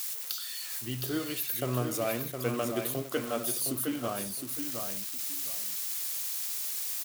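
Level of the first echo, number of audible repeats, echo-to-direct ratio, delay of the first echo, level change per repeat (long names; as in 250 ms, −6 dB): −6.0 dB, 2, −6.0 dB, 713 ms, −13.0 dB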